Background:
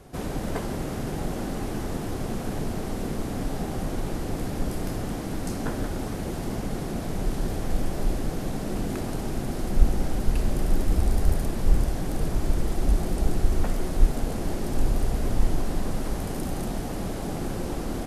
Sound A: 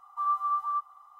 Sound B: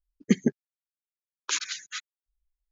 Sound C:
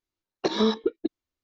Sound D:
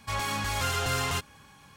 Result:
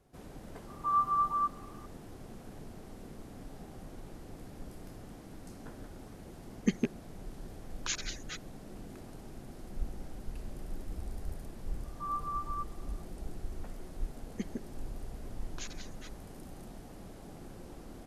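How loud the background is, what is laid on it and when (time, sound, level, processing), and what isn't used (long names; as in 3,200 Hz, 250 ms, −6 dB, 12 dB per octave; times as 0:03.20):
background −18 dB
0:00.67: mix in A −0.5 dB
0:06.37: mix in B −7 dB + loose part that buzzes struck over −26 dBFS, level −20 dBFS
0:11.83: mix in A −8.5 dB
0:14.09: mix in B −16.5 dB
not used: C, D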